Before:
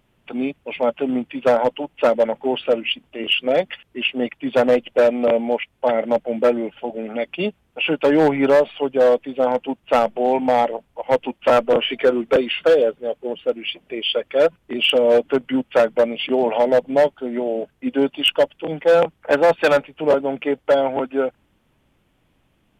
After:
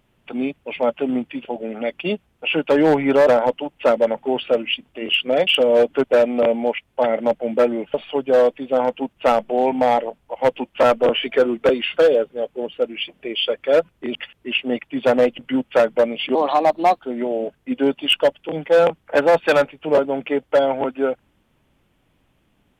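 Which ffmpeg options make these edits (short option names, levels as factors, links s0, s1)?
-filter_complex "[0:a]asplit=10[s0][s1][s2][s3][s4][s5][s6][s7][s8][s9];[s0]atrim=end=1.452[s10];[s1]atrim=start=6.788:end=8.612[s11];[s2]atrim=start=1.448:end=3.652[s12];[s3]atrim=start=14.818:end=15.392[s13];[s4]atrim=start=4.888:end=6.792[s14];[s5]atrim=start=8.608:end=14.822[s15];[s6]atrim=start=3.648:end=4.892[s16];[s7]atrim=start=15.388:end=16.354[s17];[s8]atrim=start=16.35:end=17.15,asetpts=PTS-STARTPTS,asetrate=54684,aresample=44100[s18];[s9]atrim=start=17.146[s19];[s10][s11]acrossfade=d=0.004:c1=hsin:c2=hsin[s20];[s20][s12]acrossfade=d=0.004:c1=hsin:c2=hsin[s21];[s21][s13]acrossfade=d=0.004:c1=hsin:c2=hsin[s22];[s22][s14]acrossfade=d=0.004:c1=hsin:c2=hsin[s23];[s23][s15]acrossfade=d=0.004:c1=hsin:c2=hsin[s24];[s24][s16]acrossfade=d=0.004:c1=hsin:c2=hsin[s25];[s25][s17]acrossfade=d=0.004:c1=hsin:c2=hsin[s26];[s26][s18]acrossfade=d=0.004:c1=hsin:c2=hsin[s27];[s27][s19]acrossfade=d=0.004:c1=hsin:c2=hsin"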